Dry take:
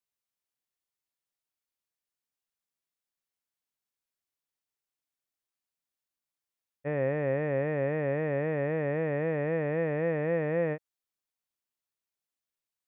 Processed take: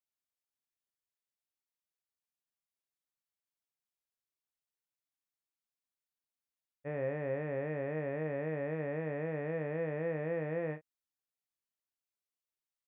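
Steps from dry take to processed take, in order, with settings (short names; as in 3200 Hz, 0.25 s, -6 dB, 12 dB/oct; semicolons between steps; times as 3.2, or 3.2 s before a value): doubler 32 ms -9 dB; gain -7.5 dB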